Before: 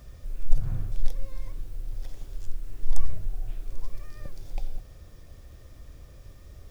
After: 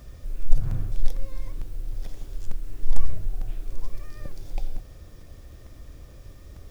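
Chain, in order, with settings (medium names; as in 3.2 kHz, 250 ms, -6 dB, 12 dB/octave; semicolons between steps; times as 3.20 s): peaking EQ 300 Hz +3 dB 0.77 oct; crackling interface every 0.45 s, samples 128, repeat, from 0.71 s; trim +2.5 dB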